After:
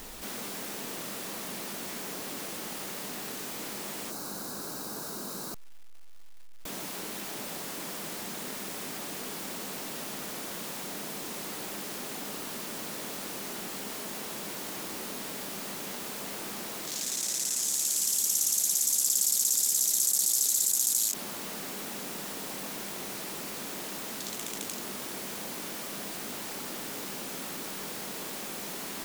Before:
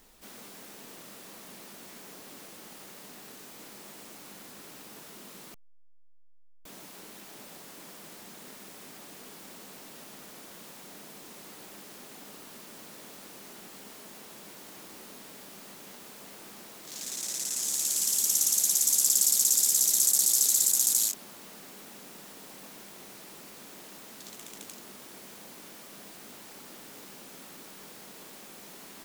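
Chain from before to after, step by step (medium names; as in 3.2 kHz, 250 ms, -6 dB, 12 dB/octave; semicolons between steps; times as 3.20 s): time-frequency box 4.10–6.38 s, 1.7–3.7 kHz -11 dB; crackle 510 per s -60 dBFS; level flattener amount 50%; trim -3.5 dB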